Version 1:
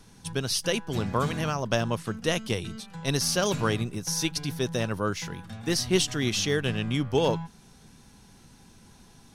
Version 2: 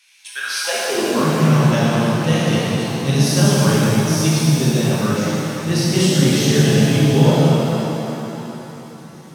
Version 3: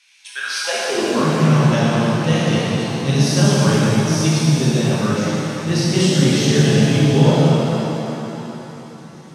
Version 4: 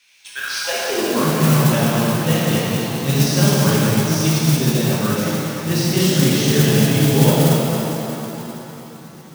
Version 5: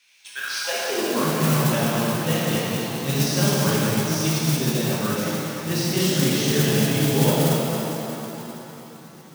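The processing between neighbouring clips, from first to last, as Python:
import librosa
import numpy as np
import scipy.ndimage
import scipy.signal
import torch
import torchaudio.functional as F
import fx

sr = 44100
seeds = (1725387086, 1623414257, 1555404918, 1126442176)

y1 = fx.filter_sweep_highpass(x, sr, from_hz=2400.0, to_hz=150.0, start_s=0.22, end_s=1.34, q=4.7)
y1 = fx.rev_shimmer(y1, sr, seeds[0], rt60_s=3.2, semitones=7, shimmer_db=-8, drr_db=-8.0)
y1 = F.gain(torch.from_numpy(y1), -1.5).numpy()
y2 = scipy.signal.sosfilt(scipy.signal.butter(2, 8300.0, 'lowpass', fs=sr, output='sos'), y1)
y3 = fx.mod_noise(y2, sr, seeds[1], snr_db=12)
y3 = F.gain(torch.from_numpy(y3), -1.0).numpy()
y4 = fx.low_shelf(y3, sr, hz=130.0, db=-7.0)
y4 = F.gain(torch.from_numpy(y4), -3.5).numpy()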